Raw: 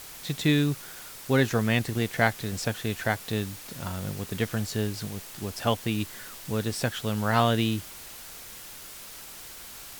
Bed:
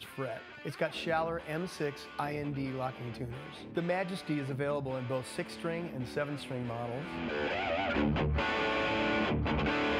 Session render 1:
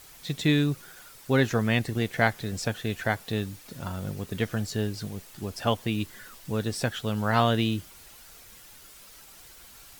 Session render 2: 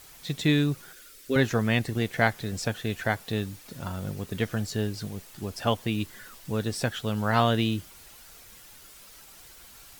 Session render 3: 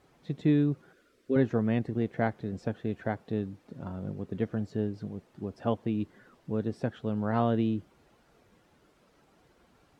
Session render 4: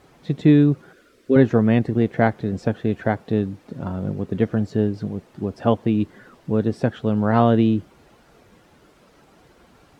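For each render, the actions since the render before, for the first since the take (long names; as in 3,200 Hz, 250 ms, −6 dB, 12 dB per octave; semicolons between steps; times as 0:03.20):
broadband denoise 8 dB, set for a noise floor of −44 dBFS
0:00.93–0:01.36: phaser with its sweep stopped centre 350 Hz, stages 4
resonant band-pass 280 Hz, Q 0.67
level +10.5 dB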